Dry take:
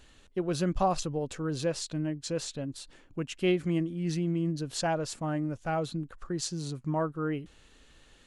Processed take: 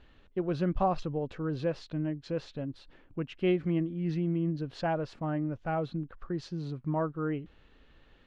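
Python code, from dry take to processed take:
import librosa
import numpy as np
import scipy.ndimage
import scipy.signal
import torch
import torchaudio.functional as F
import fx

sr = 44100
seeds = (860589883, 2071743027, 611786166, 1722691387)

y = fx.air_absorb(x, sr, metres=310.0)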